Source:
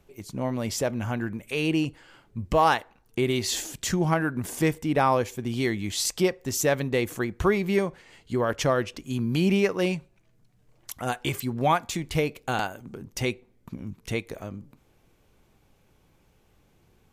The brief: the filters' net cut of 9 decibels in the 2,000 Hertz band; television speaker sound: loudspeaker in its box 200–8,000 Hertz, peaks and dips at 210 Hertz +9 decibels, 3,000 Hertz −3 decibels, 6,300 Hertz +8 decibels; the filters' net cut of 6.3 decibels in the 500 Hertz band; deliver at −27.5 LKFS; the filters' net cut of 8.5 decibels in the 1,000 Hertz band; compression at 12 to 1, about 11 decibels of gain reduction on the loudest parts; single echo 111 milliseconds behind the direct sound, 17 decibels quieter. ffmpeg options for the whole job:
ffmpeg -i in.wav -af "equalizer=frequency=500:width_type=o:gain=-7,equalizer=frequency=1000:width_type=o:gain=-6.5,equalizer=frequency=2000:width_type=o:gain=-9,acompressor=threshold=-32dB:ratio=12,highpass=frequency=200:width=0.5412,highpass=frequency=200:width=1.3066,equalizer=frequency=210:width_type=q:width=4:gain=9,equalizer=frequency=3000:width_type=q:width=4:gain=-3,equalizer=frequency=6300:width_type=q:width=4:gain=8,lowpass=frequency=8000:width=0.5412,lowpass=frequency=8000:width=1.3066,aecho=1:1:111:0.141,volume=9.5dB" out.wav

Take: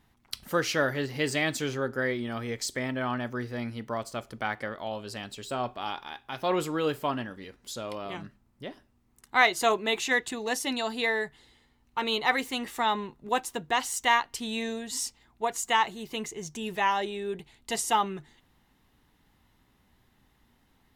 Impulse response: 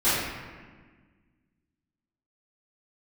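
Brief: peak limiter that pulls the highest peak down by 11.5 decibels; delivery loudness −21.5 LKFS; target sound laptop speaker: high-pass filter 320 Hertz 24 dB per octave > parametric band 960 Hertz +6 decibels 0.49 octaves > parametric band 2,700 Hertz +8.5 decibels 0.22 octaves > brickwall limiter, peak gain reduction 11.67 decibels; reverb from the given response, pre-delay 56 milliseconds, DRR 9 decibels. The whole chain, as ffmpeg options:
-filter_complex "[0:a]alimiter=limit=-19dB:level=0:latency=1,asplit=2[link_01][link_02];[1:a]atrim=start_sample=2205,adelay=56[link_03];[link_02][link_03]afir=irnorm=-1:irlink=0,volume=-25.5dB[link_04];[link_01][link_04]amix=inputs=2:normalize=0,highpass=frequency=320:width=0.5412,highpass=frequency=320:width=1.3066,equalizer=frequency=960:width_type=o:width=0.49:gain=6,equalizer=frequency=2700:width_type=o:width=0.22:gain=8.5,volume=14.5dB,alimiter=limit=-11.5dB:level=0:latency=1"

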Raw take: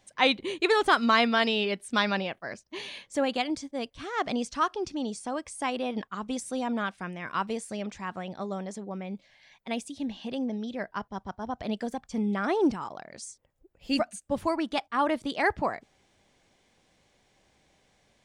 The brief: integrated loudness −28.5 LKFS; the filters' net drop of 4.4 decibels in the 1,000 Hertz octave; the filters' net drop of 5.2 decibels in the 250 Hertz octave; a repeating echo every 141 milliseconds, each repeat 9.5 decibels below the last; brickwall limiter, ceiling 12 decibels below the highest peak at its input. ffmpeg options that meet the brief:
ffmpeg -i in.wav -af "equalizer=frequency=250:width_type=o:gain=-6,equalizer=frequency=1000:width_type=o:gain=-5.5,alimiter=limit=-22.5dB:level=0:latency=1,aecho=1:1:141|282|423|564:0.335|0.111|0.0365|0.012,volume=6.5dB" out.wav

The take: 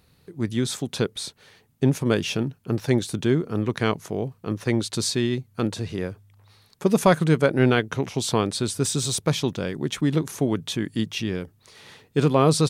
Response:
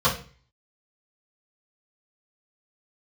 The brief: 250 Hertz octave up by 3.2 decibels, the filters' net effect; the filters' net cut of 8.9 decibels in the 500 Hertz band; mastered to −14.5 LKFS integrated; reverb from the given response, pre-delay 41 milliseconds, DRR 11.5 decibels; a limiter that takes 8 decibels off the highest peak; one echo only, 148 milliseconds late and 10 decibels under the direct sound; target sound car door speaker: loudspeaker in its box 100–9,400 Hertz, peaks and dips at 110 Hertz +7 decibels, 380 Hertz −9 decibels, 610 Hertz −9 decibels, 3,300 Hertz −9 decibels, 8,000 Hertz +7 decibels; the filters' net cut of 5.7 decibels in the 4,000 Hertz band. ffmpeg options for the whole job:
-filter_complex "[0:a]equalizer=frequency=250:width_type=o:gain=7,equalizer=frequency=500:width_type=o:gain=-6,equalizer=frequency=4000:width_type=o:gain=-3,alimiter=limit=-12.5dB:level=0:latency=1,aecho=1:1:148:0.316,asplit=2[link_01][link_02];[1:a]atrim=start_sample=2205,adelay=41[link_03];[link_02][link_03]afir=irnorm=-1:irlink=0,volume=-28.5dB[link_04];[link_01][link_04]amix=inputs=2:normalize=0,highpass=100,equalizer=frequency=110:width_type=q:width=4:gain=7,equalizer=frequency=380:width_type=q:width=4:gain=-9,equalizer=frequency=610:width_type=q:width=4:gain=-9,equalizer=frequency=3300:width_type=q:width=4:gain=-9,equalizer=frequency=8000:width_type=q:width=4:gain=7,lowpass=frequency=9400:width=0.5412,lowpass=frequency=9400:width=1.3066,volume=10dB"

